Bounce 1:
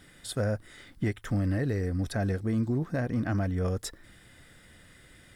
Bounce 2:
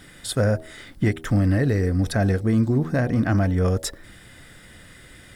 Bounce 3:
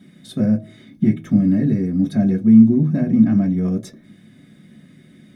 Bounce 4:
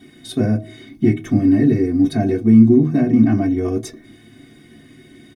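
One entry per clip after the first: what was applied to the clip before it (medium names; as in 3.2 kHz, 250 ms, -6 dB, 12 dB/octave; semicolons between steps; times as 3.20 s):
de-hum 79.91 Hz, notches 11; trim +8.5 dB
reverberation RT60 0.15 s, pre-delay 3 ms, DRR -0.5 dB; trim -15.5 dB
comb 2.7 ms, depth 98%; trim +3.5 dB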